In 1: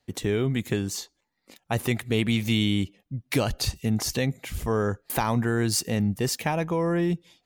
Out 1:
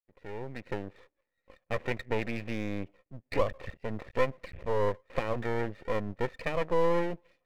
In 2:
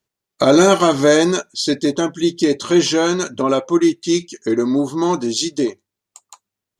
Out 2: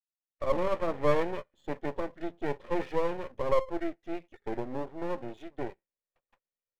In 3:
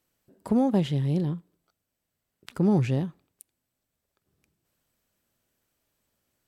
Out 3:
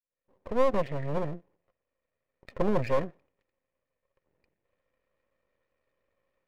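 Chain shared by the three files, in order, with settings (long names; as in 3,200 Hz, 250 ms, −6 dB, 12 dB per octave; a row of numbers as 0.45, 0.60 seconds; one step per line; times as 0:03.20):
fade in at the beginning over 1.00 s
formant resonators in series e
half-wave rectification
normalise the peak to −12 dBFS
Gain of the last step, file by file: +10.5, +0.5, +16.5 decibels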